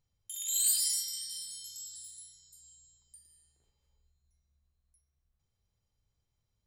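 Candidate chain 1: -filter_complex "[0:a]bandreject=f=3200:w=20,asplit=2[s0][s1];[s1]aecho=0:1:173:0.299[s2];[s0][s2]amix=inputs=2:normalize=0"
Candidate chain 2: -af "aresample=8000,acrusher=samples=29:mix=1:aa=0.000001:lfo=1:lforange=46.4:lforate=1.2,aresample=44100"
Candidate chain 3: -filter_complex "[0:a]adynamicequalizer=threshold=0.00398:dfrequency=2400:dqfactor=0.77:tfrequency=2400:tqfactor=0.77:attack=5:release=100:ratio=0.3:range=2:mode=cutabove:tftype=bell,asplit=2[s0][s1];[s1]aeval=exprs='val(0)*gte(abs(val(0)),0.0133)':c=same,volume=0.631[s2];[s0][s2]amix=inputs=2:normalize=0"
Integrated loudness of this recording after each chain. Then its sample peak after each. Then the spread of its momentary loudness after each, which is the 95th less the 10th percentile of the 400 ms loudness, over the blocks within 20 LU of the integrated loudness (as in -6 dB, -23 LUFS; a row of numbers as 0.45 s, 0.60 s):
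-30.5 LUFS, -52.0 LUFS, -26.0 LUFS; -15.5 dBFS, -35.5 dBFS, -11.5 dBFS; 19 LU, 16 LU, 21 LU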